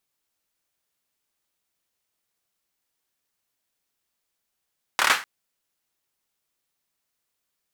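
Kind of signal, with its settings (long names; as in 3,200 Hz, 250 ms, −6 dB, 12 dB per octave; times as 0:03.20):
synth clap length 0.25 s, bursts 5, apart 27 ms, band 1,500 Hz, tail 0.30 s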